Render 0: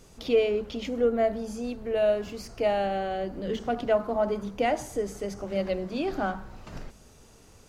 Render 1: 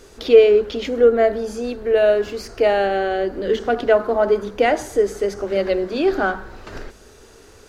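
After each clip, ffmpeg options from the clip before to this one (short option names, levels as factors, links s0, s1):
-af "equalizer=f=160:t=o:w=0.67:g=-9,equalizer=f=400:t=o:w=0.67:g=9,equalizer=f=1600:t=o:w=0.67:g=8,equalizer=f=4000:t=o:w=0.67:g=4,volume=1.88"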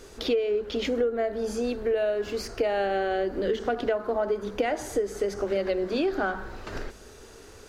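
-af "acompressor=threshold=0.0891:ratio=10,volume=0.841"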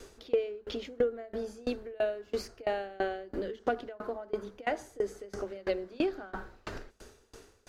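-af "aeval=exprs='val(0)*pow(10,-26*if(lt(mod(3*n/s,1),2*abs(3)/1000),1-mod(3*n/s,1)/(2*abs(3)/1000),(mod(3*n/s,1)-2*abs(3)/1000)/(1-2*abs(3)/1000))/20)':c=same"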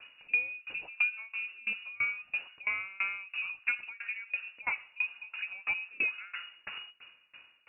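-af "lowpass=f=2500:t=q:w=0.5098,lowpass=f=2500:t=q:w=0.6013,lowpass=f=2500:t=q:w=0.9,lowpass=f=2500:t=q:w=2.563,afreqshift=-2900,volume=0.841"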